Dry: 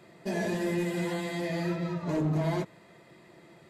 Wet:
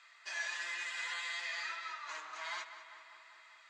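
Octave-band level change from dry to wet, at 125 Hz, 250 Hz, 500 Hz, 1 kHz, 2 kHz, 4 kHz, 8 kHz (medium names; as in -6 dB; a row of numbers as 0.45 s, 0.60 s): under -40 dB, under -40 dB, -25.5 dB, -5.5 dB, +1.5 dB, +1.5 dB, -1.0 dB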